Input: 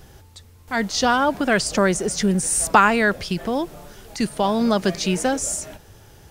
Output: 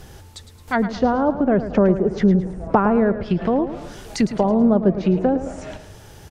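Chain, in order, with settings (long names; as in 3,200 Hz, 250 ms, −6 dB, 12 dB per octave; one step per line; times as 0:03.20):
treble cut that deepens with the level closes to 600 Hz, closed at −18 dBFS
on a send: repeating echo 109 ms, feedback 43%, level −12 dB
on the sum: level +4.5 dB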